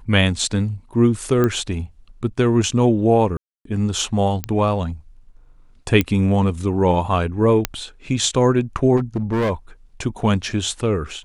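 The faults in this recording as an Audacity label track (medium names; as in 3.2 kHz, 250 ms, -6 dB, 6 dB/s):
1.440000	1.440000	pop -8 dBFS
3.370000	3.650000	dropout 283 ms
4.440000	4.440000	pop -8 dBFS
6.010000	6.010000	pop -5 dBFS
7.650000	7.650000	pop -2 dBFS
8.960000	9.510000	clipped -16.5 dBFS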